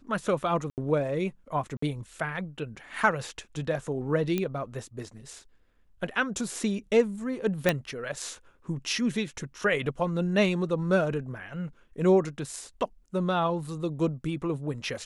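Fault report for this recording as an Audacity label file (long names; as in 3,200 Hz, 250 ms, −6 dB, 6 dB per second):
0.700000	0.780000	drop-out 78 ms
1.770000	1.820000	drop-out 54 ms
4.380000	4.380000	click −15 dBFS
7.690000	7.690000	click −8 dBFS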